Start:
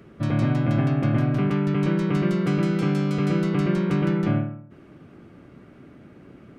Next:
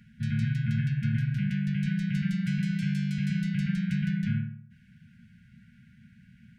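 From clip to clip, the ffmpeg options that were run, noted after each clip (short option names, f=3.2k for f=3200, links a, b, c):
-af "afftfilt=real='re*(1-between(b*sr/4096,240,1400))':imag='im*(1-between(b*sr/4096,240,1400))':win_size=4096:overlap=0.75,volume=-4.5dB"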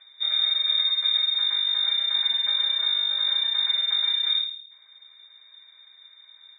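-af "acontrast=58,lowpass=f=3.2k:t=q:w=0.5098,lowpass=f=3.2k:t=q:w=0.6013,lowpass=f=3.2k:t=q:w=0.9,lowpass=f=3.2k:t=q:w=2.563,afreqshift=-3800,volume=-2.5dB"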